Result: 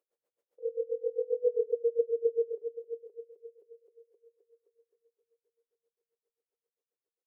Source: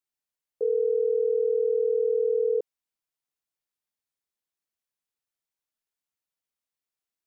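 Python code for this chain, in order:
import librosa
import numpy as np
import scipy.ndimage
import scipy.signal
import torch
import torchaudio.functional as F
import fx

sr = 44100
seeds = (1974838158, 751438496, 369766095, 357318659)

y = fx.bin_compress(x, sr, power=0.6)
y = fx.doppler_pass(y, sr, speed_mps=14, closest_m=3.7, pass_at_s=1.6)
y = scipy.signal.sosfilt(scipy.signal.butter(2, 340.0, 'highpass', fs=sr, output='sos'), y)
y = fx.notch(y, sr, hz=430.0, q=14.0)
y = fx.doubler(y, sr, ms=41.0, db=-5.5)
y = fx.rider(y, sr, range_db=4, speed_s=0.5)
y = fx.echo_heads(y, sr, ms=261, heads='first and second', feedback_pct=51, wet_db=-13)
y = y * 10.0 ** (-25 * (0.5 - 0.5 * np.cos(2.0 * np.pi * 7.5 * np.arange(len(y)) / sr)) / 20.0)
y = y * 10.0 ** (5.5 / 20.0)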